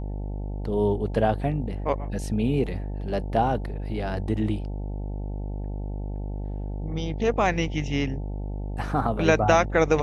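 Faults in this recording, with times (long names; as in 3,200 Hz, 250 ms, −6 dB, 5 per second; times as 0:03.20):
mains buzz 50 Hz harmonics 18 −31 dBFS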